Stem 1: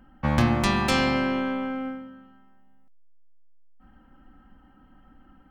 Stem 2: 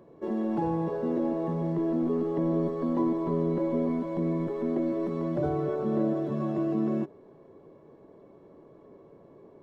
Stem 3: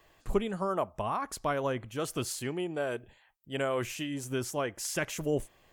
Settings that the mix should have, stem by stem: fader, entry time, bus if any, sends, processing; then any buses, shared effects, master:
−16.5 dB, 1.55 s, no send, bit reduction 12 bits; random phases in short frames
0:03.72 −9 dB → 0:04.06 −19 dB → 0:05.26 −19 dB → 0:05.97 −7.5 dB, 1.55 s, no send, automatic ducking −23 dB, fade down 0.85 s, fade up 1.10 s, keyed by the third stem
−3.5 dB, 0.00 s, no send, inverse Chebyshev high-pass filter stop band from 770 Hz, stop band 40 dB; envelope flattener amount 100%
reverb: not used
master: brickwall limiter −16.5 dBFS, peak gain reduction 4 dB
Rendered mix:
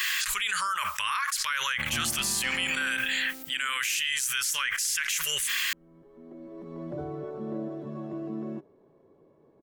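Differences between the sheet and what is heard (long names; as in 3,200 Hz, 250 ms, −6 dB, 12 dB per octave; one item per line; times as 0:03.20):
stem 1: missing random phases in short frames
stem 3 −3.5 dB → +5.5 dB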